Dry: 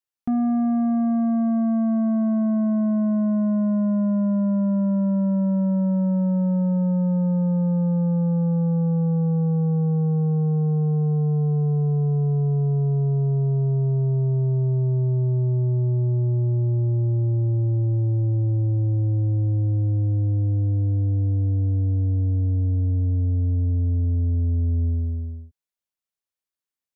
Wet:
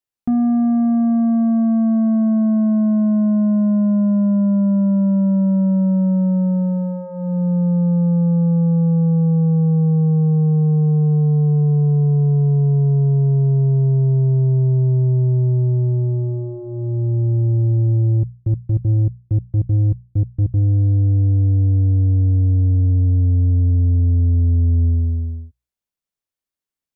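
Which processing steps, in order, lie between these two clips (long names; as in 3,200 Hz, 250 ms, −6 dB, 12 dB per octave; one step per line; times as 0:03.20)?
low-shelf EQ 400 Hz +7 dB
0:18.17–0:20.65: gate pattern ".x.xxx...x." 195 BPM −60 dB
mains-hum notches 60/120/180 Hz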